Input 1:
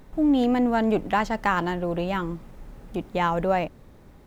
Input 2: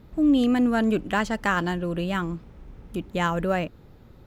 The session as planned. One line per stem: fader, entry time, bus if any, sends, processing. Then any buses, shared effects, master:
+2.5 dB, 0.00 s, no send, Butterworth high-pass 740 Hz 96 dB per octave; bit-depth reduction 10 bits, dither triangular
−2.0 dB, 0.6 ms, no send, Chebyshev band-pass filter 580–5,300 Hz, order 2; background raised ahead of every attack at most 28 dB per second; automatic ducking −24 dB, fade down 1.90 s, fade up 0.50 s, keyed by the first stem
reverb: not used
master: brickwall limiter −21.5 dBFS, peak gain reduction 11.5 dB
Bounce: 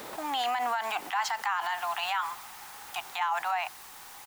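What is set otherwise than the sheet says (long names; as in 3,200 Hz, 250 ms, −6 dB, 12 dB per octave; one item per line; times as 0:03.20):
stem 1 +2.5 dB → +11.0 dB
stem 2 −2.0 dB → −8.5 dB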